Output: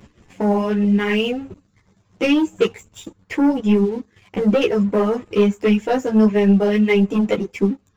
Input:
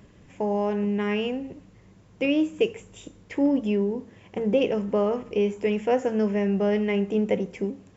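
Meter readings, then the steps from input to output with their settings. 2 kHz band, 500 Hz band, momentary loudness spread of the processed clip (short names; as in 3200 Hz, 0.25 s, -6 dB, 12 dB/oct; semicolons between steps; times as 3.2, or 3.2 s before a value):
+8.5 dB, +5.0 dB, 7 LU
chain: reverb removal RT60 1 s; bell 570 Hz -3.5 dB 0.7 oct; sample leveller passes 2; ensemble effect; gain +6 dB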